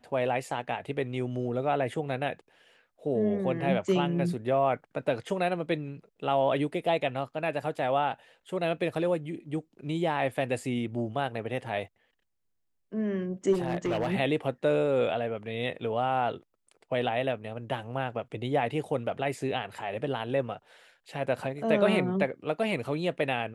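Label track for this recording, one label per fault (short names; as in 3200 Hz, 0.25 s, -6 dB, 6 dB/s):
13.520000	14.140000	clipped -24 dBFS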